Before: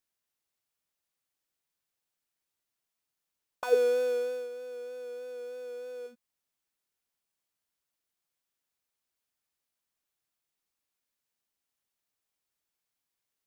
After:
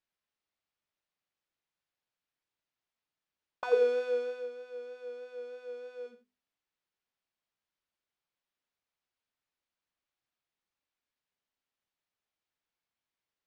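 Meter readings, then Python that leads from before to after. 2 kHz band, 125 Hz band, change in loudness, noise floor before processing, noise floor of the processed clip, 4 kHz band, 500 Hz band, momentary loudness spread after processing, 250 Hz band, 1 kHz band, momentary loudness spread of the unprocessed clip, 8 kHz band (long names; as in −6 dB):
−0.5 dB, can't be measured, −1.5 dB, below −85 dBFS, below −85 dBFS, −3.5 dB, −2.0 dB, 17 LU, −3.0 dB, −1.0 dB, 16 LU, below −10 dB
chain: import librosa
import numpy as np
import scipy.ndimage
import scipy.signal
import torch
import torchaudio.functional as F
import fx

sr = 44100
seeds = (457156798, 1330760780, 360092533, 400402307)

y = scipy.signal.sosfilt(scipy.signal.butter(2, 4000.0, 'lowpass', fs=sr, output='sos'), x)
y = fx.hum_notches(y, sr, base_hz=50, count=10)
y = y + 10.0 ** (-12.0 / 20.0) * np.pad(y, (int(85 * sr / 1000.0), 0))[:len(y)]
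y = y * 10.0 ** (-1.0 / 20.0)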